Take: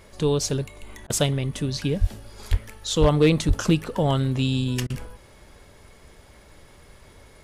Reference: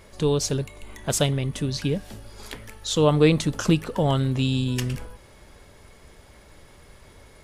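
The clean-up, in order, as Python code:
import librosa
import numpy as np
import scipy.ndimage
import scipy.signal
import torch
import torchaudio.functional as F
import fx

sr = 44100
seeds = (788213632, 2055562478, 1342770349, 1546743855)

y = fx.fix_declip(x, sr, threshold_db=-10.0)
y = fx.fix_deplosive(y, sr, at_s=(2.0, 2.5, 3.0, 3.47))
y = fx.fix_interpolate(y, sr, at_s=(1.07, 4.87), length_ms=29.0)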